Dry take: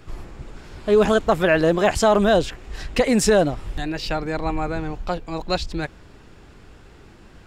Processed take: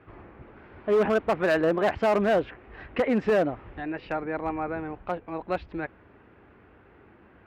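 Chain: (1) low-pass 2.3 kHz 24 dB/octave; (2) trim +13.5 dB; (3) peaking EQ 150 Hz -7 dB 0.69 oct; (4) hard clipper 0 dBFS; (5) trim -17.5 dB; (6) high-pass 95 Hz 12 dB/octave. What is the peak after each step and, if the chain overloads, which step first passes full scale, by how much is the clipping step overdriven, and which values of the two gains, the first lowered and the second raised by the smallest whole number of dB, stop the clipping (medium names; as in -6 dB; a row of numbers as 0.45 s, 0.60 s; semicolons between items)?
-6.0 dBFS, +7.5 dBFS, +8.0 dBFS, 0.0 dBFS, -17.5 dBFS, -13.5 dBFS; step 2, 8.0 dB; step 2 +5.5 dB, step 5 -9.5 dB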